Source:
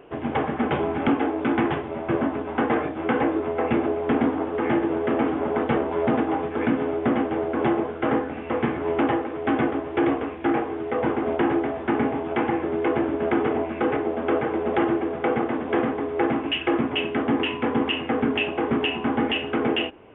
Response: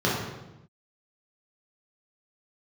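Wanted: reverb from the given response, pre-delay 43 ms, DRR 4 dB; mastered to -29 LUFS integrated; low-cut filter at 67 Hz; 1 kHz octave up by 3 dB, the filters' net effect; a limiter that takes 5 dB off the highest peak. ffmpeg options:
-filter_complex "[0:a]highpass=67,equalizer=f=1000:t=o:g=4,alimiter=limit=0.2:level=0:latency=1,asplit=2[s0][s1];[1:a]atrim=start_sample=2205,adelay=43[s2];[s1][s2]afir=irnorm=-1:irlink=0,volume=0.106[s3];[s0][s3]amix=inputs=2:normalize=0,volume=0.447"

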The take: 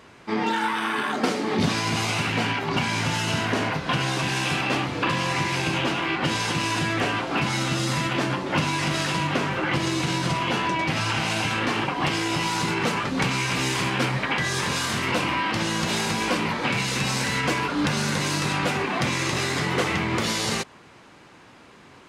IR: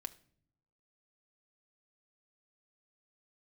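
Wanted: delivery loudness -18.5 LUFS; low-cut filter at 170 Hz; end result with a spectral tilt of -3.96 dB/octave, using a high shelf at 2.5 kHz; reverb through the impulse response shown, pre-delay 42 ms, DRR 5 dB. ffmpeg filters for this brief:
-filter_complex "[0:a]highpass=170,highshelf=f=2500:g=-5,asplit=2[s0][s1];[1:a]atrim=start_sample=2205,adelay=42[s2];[s1][s2]afir=irnorm=-1:irlink=0,volume=0.794[s3];[s0][s3]amix=inputs=2:normalize=0,volume=2.11"

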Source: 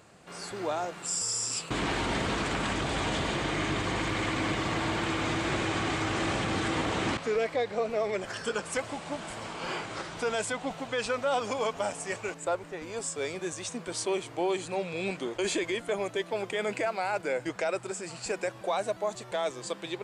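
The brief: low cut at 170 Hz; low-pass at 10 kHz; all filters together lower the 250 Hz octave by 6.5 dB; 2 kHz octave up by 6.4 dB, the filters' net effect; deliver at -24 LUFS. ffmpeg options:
-af "highpass=170,lowpass=10000,equalizer=f=250:t=o:g=-9,equalizer=f=2000:t=o:g=8,volume=1.88"

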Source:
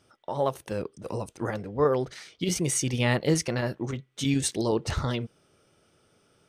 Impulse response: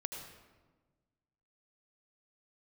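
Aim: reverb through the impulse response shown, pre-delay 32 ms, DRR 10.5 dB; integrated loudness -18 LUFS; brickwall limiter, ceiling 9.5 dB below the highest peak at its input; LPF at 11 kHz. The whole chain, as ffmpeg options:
-filter_complex "[0:a]lowpass=11000,alimiter=limit=0.0944:level=0:latency=1,asplit=2[s0][s1];[1:a]atrim=start_sample=2205,adelay=32[s2];[s1][s2]afir=irnorm=-1:irlink=0,volume=0.316[s3];[s0][s3]amix=inputs=2:normalize=0,volume=4.47"

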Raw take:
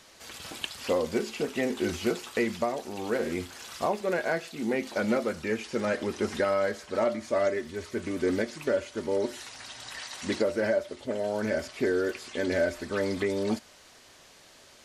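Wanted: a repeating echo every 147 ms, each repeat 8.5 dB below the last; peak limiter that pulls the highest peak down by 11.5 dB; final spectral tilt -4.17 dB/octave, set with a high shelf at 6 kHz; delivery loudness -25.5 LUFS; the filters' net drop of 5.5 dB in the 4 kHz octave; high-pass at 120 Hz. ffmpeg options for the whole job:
-af "highpass=120,equalizer=f=4000:t=o:g=-4,highshelf=f=6000:g=-9,alimiter=level_in=1.19:limit=0.0631:level=0:latency=1,volume=0.841,aecho=1:1:147|294|441|588:0.376|0.143|0.0543|0.0206,volume=3.16"

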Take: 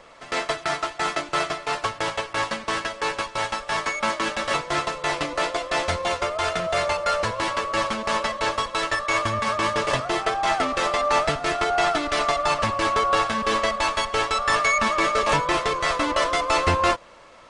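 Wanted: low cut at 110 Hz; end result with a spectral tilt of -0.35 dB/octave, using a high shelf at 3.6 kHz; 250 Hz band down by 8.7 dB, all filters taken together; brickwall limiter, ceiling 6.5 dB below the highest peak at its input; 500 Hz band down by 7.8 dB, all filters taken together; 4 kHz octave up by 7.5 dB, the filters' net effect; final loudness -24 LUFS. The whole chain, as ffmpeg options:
-af "highpass=110,equalizer=f=250:t=o:g=-8.5,equalizer=f=500:t=o:g=-9,highshelf=f=3600:g=5.5,equalizer=f=4000:t=o:g=6,volume=0.944,alimiter=limit=0.224:level=0:latency=1"

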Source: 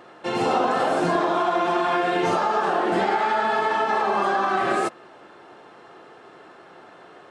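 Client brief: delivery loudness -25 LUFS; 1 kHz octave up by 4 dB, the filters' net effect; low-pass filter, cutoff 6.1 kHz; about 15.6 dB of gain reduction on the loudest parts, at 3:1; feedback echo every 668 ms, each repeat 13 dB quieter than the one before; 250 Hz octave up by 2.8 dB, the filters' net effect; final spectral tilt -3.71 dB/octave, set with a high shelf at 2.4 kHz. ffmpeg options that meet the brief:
-af "lowpass=6100,equalizer=f=250:t=o:g=4,equalizer=f=1000:t=o:g=6,highshelf=f=2400:g=-6,acompressor=threshold=0.0141:ratio=3,aecho=1:1:668|1336|2004:0.224|0.0493|0.0108,volume=3.35"

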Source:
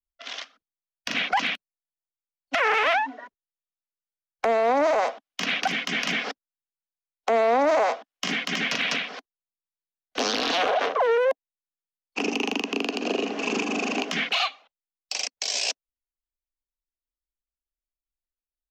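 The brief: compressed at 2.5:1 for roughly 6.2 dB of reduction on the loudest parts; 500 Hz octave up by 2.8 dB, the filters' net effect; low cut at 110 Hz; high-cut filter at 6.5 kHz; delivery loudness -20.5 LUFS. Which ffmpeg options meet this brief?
-af "highpass=110,lowpass=6500,equalizer=f=500:t=o:g=3.5,acompressor=threshold=0.0562:ratio=2.5,volume=2.37"

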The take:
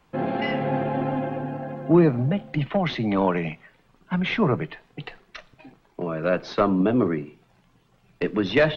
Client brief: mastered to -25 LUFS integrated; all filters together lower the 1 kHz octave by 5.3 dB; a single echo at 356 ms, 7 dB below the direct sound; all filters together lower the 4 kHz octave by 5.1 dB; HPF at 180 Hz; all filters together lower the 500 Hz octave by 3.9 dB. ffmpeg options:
-af "highpass=180,equalizer=f=500:t=o:g=-3.5,equalizer=f=1000:t=o:g=-5.5,equalizer=f=4000:t=o:g=-6.5,aecho=1:1:356:0.447,volume=1.26"

